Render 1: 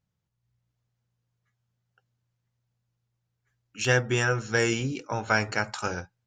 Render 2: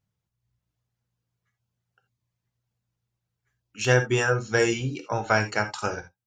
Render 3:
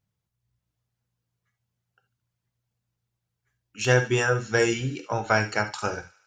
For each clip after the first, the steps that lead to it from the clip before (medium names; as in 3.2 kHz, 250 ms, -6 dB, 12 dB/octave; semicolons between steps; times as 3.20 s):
reverb removal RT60 0.56 s; gated-style reverb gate 100 ms flat, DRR 7.5 dB; dynamic bell 610 Hz, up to +4 dB, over -38 dBFS, Q 0.92
feedback echo behind a high-pass 73 ms, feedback 61%, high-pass 1.7 kHz, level -17 dB